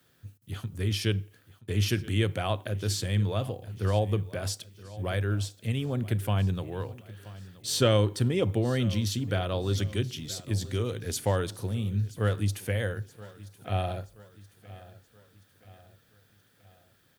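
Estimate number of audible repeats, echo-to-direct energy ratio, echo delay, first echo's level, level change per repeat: 3, -18.0 dB, 976 ms, -19.0 dB, -6.5 dB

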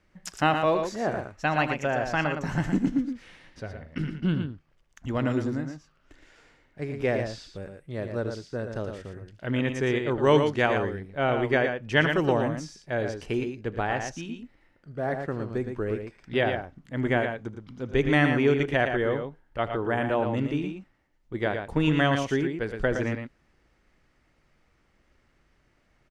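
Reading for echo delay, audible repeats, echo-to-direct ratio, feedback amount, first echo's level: 79 ms, 2, -6.0 dB, no regular repeats, -15.5 dB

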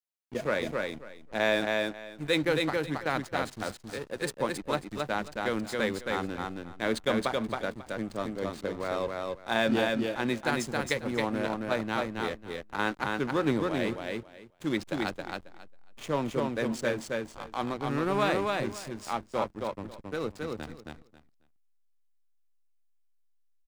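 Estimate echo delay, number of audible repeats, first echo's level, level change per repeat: 271 ms, 3, -3.0 dB, -15.0 dB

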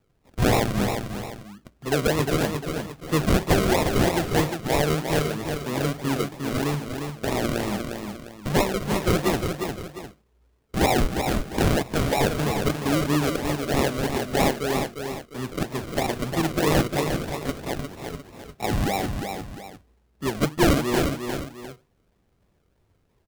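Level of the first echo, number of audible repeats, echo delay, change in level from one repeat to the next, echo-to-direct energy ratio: -6.0 dB, 2, 354 ms, -8.5 dB, -5.5 dB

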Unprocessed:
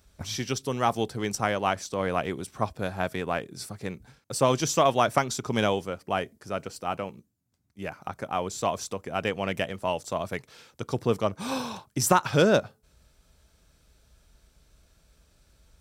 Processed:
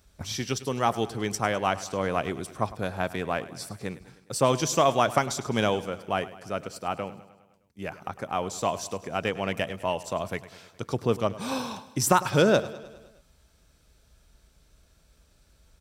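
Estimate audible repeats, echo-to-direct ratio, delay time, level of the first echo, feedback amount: 5, -15.0 dB, 103 ms, -17.0 dB, 60%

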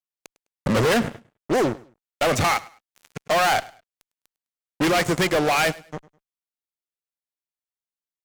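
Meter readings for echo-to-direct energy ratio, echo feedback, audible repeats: -20.5 dB, 27%, 2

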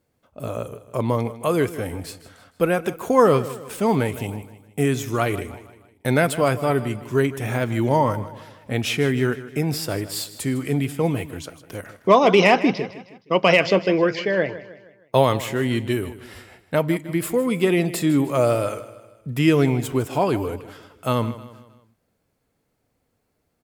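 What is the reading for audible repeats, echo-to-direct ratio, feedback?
3, -14.5 dB, 46%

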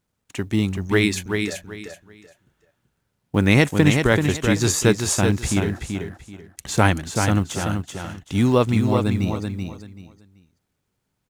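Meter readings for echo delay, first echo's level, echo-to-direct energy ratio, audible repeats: 383 ms, -5.5 dB, -5.0 dB, 3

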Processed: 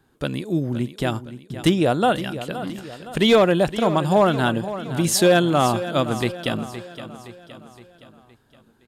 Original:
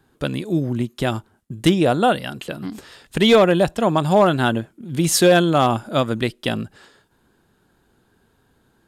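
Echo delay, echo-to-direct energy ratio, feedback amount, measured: 517 ms, -11.5 dB, 50%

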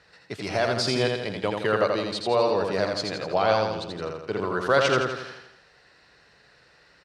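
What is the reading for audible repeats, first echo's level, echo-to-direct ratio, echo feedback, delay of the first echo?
6, -4.0 dB, -2.5 dB, 51%, 83 ms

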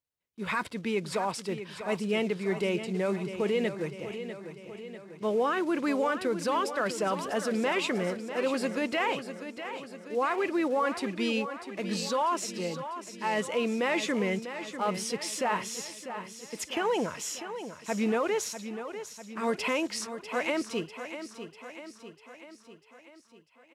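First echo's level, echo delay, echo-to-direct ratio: -10.5 dB, 646 ms, -9.0 dB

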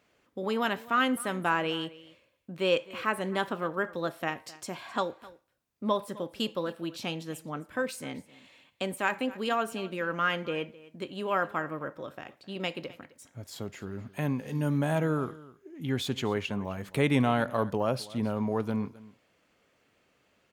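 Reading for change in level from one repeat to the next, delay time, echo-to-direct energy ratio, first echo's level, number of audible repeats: no regular repeats, 260 ms, -20.0 dB, -20.0 dB, 1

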